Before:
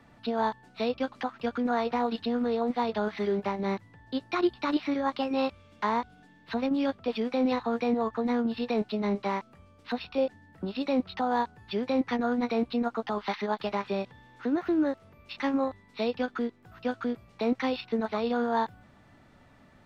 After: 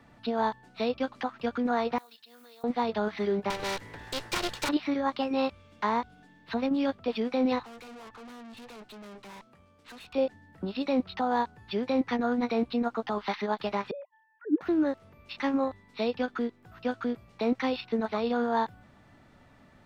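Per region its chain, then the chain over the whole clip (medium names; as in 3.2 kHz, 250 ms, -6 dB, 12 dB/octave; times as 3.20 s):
1.98–2.64 s: block-companded coder 7-bit + differentiator + compression, threshold -49 dBFS
3.50–4.69 s: comb filter that takes the minimum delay 2.1 ms + spectrum-flattening compressor 2:1
7.63–10.13 s: high-pass 120 Hz 6 dB/octave + valve stage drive 45 dB, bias 0.5
13.91–14.61 s: formants replaced by sine waves + expander -50 dBFS + auto-wah 270–1700 Hz, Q 2, down, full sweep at -30.5 dBFS
whole clip: none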